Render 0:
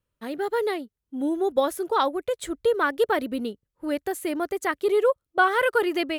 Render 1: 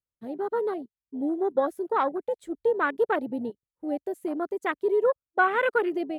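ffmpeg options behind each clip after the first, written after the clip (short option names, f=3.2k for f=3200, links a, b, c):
-af "afwtdn=0.0447,volume=-2dB"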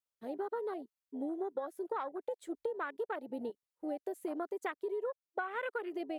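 -af "bass=f=250:g=-14,treble=f=4k:g=1,acompressor=threshold=-33dB:ratio=12,volume=-1dB"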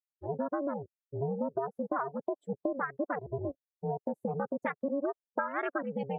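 -af "afftdn=nr=31:nf=-45,aeval=exprs='val(0)*sin(2*PI*140*n/s)':c=same,volume=7.5dB"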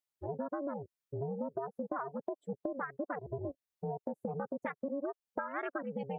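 -af "acompressor=threshold=-43dB:ratio=2,volume=3dB"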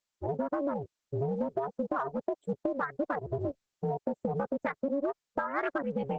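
-filter_complex "[0:a]asplit=2[a][b];[b]volume=32dB,asoftclip=hard,volume=-32dB,volume=-11.5dB[c];[a][c]amix=inputs=2:normalize=0,volume=4.5dB" -ar 48000 -c:a libopus -b:a 12k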